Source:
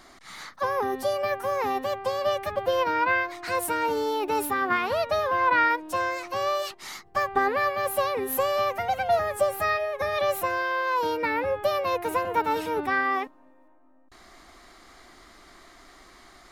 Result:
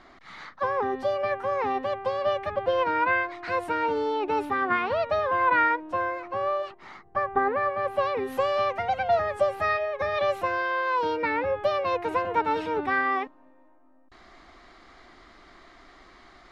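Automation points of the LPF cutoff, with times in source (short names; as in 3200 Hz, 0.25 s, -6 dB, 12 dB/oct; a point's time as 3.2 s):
5.48 s 3000 Hz
6.14 s 1600 Hz
7.75 s 1600 Hz
8.19 s 3900 Hz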